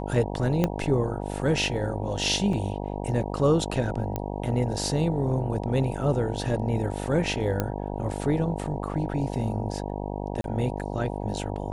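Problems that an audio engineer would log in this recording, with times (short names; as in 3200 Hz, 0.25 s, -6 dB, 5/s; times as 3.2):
buzz 50 Hz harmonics 19 -32 dBFS
0.64 pop -10 dBFS
2.53 gap 2.8 ms
4.16 pop -15 dBFS
7.6 pop -11 dBFS
10.41–10.44 gap 32 ms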